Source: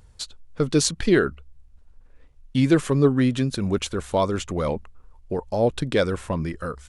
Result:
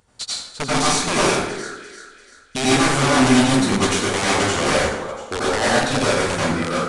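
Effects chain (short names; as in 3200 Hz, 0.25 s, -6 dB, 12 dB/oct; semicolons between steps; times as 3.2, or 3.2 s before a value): HPF 340 Hz 6 dB/oct; in parallel at -6.5 dB: bit-crush 7-bit; on the sum: limiter -14.5 dBFS, peak gain reduction 11 dB; on a send: thinning echo 0.344 s, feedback 45%, high-pass 680 Hz, level -10.5 dB; on the sum: wrapped overs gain 18 dB; plate-style reverb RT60 0.93 s, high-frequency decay 0.6×, pre-delay 75 ms, DRR -7.5 dB; downsampling 22050 Hz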